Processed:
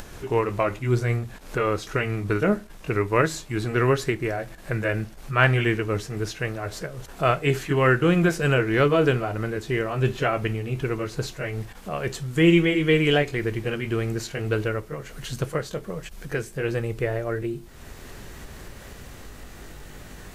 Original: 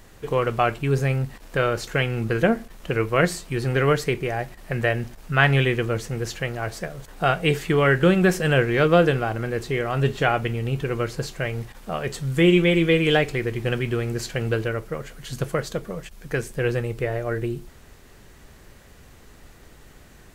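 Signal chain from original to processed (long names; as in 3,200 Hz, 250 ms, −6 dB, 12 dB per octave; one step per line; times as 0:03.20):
pitch glide at a constant tempo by −2 semitones ending unshifted
upward compression, threshold −30 dBFS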